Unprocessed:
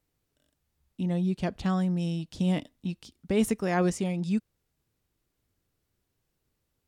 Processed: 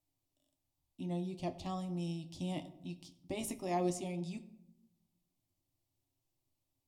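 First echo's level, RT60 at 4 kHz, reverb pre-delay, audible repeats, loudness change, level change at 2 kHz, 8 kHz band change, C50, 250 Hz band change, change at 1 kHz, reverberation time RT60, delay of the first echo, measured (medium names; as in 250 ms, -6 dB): no echo, 0.50 s, 9 ms, no echo, -11.0 dB, -14.0 dB, -5.5 dB, 15.5 dB, -12.0 dB, -6.0 dB, 0.90 s, no echo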